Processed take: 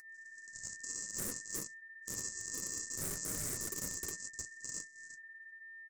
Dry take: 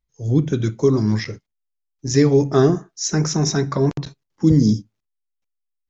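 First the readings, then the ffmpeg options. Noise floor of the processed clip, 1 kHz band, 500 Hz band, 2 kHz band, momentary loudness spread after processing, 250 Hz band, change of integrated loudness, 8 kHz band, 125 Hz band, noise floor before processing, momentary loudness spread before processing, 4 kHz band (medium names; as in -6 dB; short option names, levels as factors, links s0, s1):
-56 dBFS, -26.0 dB, -33.5 dB, -9.5 dB, 14 LU, -34.0 dB, -21.0 dB, no reading, -34.0 dB, -78 dBFS, 10 LU, -17.5 dB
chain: -filter_complex "[0:a]areverse,acompressor=threshold=0.0562:ratio=16,areverse,highpass=f=950:w=0.5412,highpass=f=950:w=1.3066,aecho=1:1:56|59|86|360:0.355|0.562|0.106|0.668,afwtdn=0.00447,aresample=16000,acrusher=samples=21:mix=1:aa=0.000001,aresample=44100,aemphasis=mode=production:type=75kf,aeval=exprs='val(0)+0.00891*sin(2*PI*1800*n/s)':c=same,aeval=exprs='0.0316*(abs(mod(val(0)/0.0316+3,4)-2)-1)':c=same,aexciter=amount=15.4:drive=9.9:freq=5400,acrossover=split=3100[s0][s1];[s1]acompressor=threshold=0.0631:ratio=4:attack=1:release=60[s2];[s0][s2]amix=inputs=2:normalize=0,volume=9.44,asoftclip=hard,volume=0.106,flanger=delay=6.4:depth=5.4:regen=-45:speed=0.61:shape=sinusoidal,volume=0.562"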